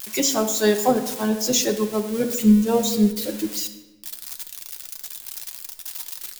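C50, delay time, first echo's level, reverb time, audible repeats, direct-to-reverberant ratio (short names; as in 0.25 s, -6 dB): 10.0 dB, none, none, 1.1 s, none, 4.0 dB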